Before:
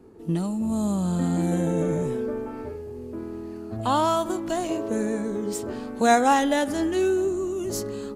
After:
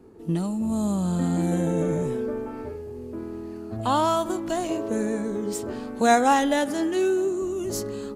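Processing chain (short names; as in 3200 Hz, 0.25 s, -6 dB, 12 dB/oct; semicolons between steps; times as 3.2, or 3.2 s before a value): 6.66–7.42 HPF 160 Hz 12 dB/oct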